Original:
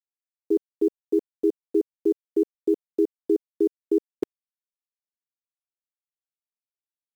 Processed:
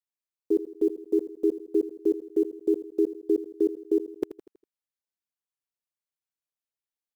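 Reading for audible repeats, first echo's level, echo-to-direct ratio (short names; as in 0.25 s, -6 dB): 4, -14.0 dB, -13.0 dB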